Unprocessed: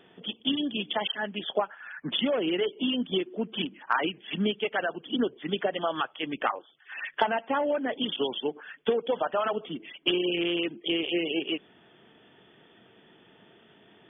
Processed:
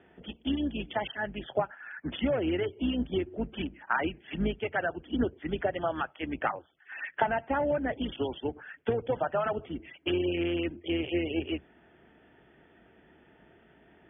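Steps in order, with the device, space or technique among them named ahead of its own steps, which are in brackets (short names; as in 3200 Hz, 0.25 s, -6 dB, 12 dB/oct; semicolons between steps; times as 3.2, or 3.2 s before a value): sub-octave bass pedal (octaver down 2 oct, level -2 dB; speaker cabinet 61–2300 Hz, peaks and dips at 67 Hz -6 dB, 100 Hz -7 dB, 200 Hz -3 dB, 450 Hz -4 dB, 1100 Hz -7 dB)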